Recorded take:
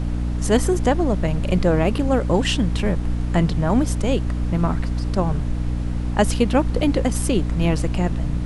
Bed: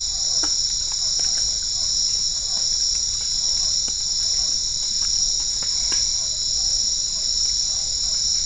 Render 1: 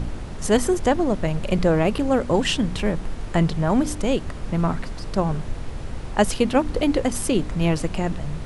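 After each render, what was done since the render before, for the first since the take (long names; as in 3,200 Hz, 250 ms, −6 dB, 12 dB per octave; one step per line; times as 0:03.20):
hum removal 60 Hz, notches 5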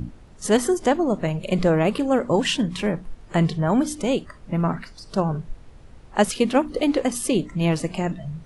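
noise reduction from a noise print 15 dB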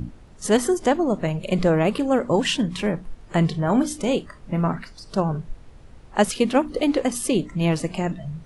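0:03.51–0:04.68: double-tracking delay 28 ms −11 dB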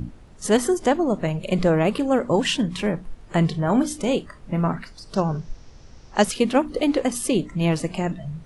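0:05.15–0:06.24: low-pass with resonance 5,700 Hz, resonance Q 5.5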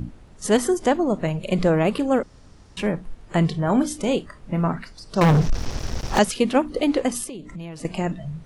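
0:02.23–0:02.77: fill with room tone
0:05.21–0:06.19: leveller curve on the samples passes 5
0:07.24–0:07.85: downward compressor, threshold −32 dBFS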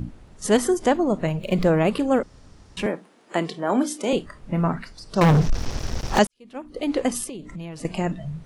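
0:01.29–0:01.72: running median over 5 samples
0:02.86–0:04.13: high-pass filter 240 Hz 24 dB per octave
0:06.27–0:07.05: fade in quadratic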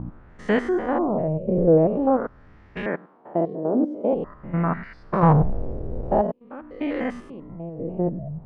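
spectrum averaged block by block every 100 ms
auto-filter low-pass sine 0.47 Hz 470–2,000 Hz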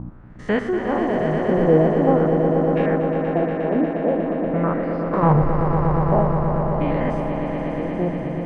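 echo that builds up and dies away 119 ms, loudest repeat 5, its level −8 dB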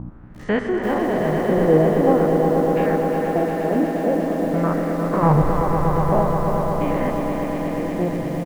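repeating echo 155 ms, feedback 56%, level −13 dB
feedback echo at a low word length 347 ms, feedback 35%, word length 6 bits, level −9 dB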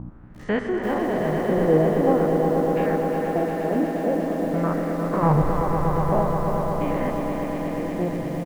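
level −3 dB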